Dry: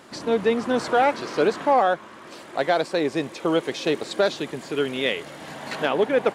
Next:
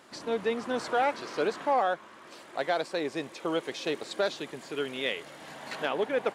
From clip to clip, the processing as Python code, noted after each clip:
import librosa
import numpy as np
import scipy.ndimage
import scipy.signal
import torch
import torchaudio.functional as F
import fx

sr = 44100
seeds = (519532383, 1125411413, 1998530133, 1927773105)

y = fx.low_shelf(x, sr, hz=350.0, db=-6.0)
y = y * 10.0 ** (-6.0 / 20.0)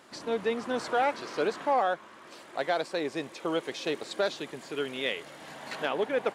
y = x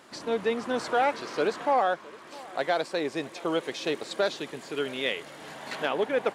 y = x + 10.0 ** (-21.5 / 20.0) * np.pad(x, (int(663 * sr / 1000.0), 0))[:len(x)]
y = y * 10.0 ** (2.0 / 20.0)